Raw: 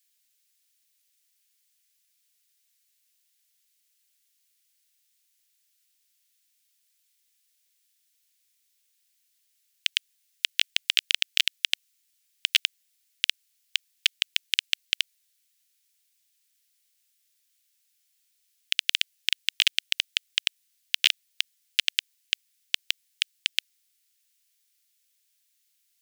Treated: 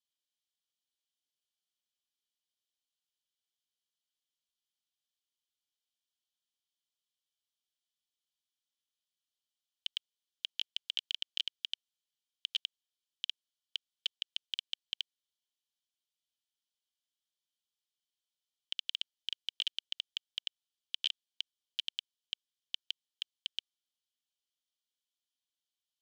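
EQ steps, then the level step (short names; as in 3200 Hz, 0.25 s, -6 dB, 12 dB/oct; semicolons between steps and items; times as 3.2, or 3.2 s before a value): vowel filter i; fixed phaser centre 900 Hz, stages 4; +6.0 dB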